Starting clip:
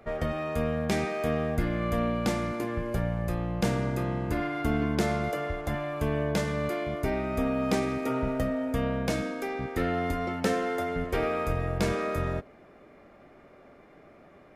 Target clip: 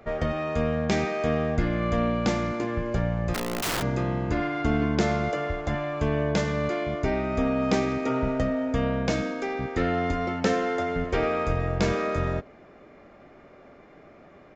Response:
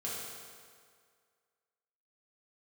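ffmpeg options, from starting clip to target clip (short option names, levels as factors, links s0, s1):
-filter_complex "[0:a]aresample=16000,aresample=44100,asplit=3[s0][s1][s2];[s0]afade=t=out:st=3.33:d=0.02[s3];[s1]aeval=exprs='(mod(18.8*val(0)+1,2)-1)/18.8':c=same,afade=t=in:st=3.33:d=0.02,afade=t=out:st=3.81:d=0.02[s4];[s2]afade=t=in:st=3.81:d=0.02[s5];[s3][s4][s5]amix=inputs=3:normalize=0,volume=1.41"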